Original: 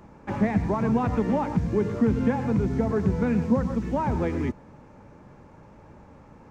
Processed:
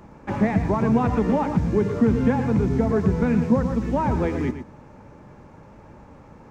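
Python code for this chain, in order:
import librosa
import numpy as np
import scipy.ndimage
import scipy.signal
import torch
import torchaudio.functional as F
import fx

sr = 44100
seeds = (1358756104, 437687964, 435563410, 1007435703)

y = x + 10.0 ** (-10.5 / 20.0) * np.pad(x, (int(116 * sr / 1000.0), 0))[:len(x)]
y = F.gain(torch.from_numpy(y), 3.0).numpy()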